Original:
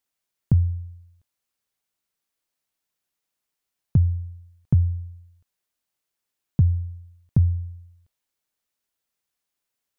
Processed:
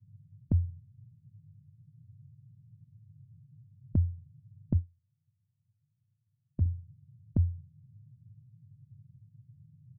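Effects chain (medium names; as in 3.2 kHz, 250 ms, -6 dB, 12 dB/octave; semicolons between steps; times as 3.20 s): expander on every frequency bin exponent 2; band noise 96–150 Hz -46 dBFS; comb 3.7 ms, depth 55%; level-controlled noise filter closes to 340 Hz, open at -21 dBFS; 4.74–6.66 s: upward expansion 2.5:1, over -31 dBFS; trim -4.5 dB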